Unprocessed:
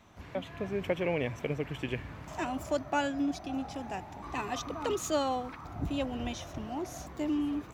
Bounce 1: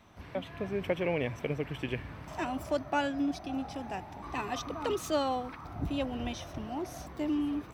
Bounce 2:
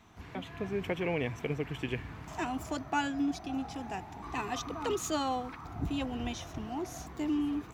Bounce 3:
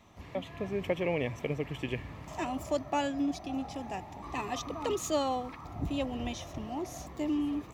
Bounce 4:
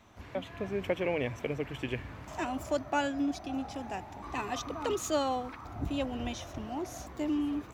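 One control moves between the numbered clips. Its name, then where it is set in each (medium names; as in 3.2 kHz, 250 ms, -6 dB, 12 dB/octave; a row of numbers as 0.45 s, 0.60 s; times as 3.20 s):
band-stop, frequency: 6.9 kHz, 570 Hz, 1.5 kHz, 160 Hz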